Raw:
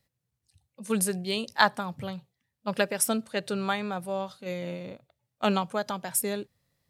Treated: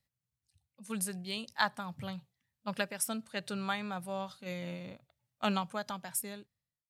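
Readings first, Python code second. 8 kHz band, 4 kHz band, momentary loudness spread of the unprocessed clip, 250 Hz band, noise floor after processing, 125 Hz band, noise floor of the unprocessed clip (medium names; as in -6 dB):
-7.5 dB, -6.0 dB, 14 LU, -7.0 dB, under -85 dBFS, -6.0 dB, -84 dBFS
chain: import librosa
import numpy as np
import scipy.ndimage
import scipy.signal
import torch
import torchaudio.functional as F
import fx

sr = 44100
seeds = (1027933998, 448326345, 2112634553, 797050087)

y = fx.fade_out_tail(x, sr, length_s=1.2)
y = fx.peak_eq(y, sr, hz=430.0, db=-7.5, octaves=1.2)
y = fx.rider(y, sr, range_db=3, speed_s=0.5)
y = y * 10.0 ** (-5.5 / 20.0)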